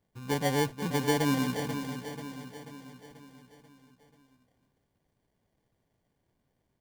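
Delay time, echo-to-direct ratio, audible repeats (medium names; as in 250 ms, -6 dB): 487 ms, -7.5 dB, 5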